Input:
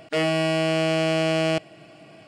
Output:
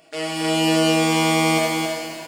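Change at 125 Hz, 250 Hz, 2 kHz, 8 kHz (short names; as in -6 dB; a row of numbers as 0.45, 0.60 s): +1.0, +6.0, +4.5, +13.0 dB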